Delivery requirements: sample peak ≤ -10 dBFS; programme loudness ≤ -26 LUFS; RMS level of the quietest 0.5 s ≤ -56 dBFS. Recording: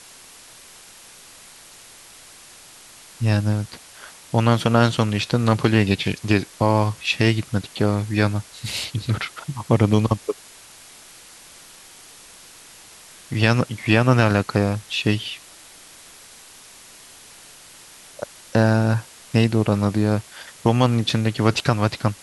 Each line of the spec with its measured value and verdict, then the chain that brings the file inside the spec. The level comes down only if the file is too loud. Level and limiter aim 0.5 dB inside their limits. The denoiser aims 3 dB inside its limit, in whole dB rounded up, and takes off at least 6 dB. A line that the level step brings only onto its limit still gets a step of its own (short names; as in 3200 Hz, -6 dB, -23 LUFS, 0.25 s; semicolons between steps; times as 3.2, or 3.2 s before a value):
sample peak -2.5 dBFS: fail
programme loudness -21.0 LUFS: fail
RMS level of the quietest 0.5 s -45 dBFS: fail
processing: denoiser 9 dB, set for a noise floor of -45 dBFS; gain -5.5 dB; limiter -10.5 dBFS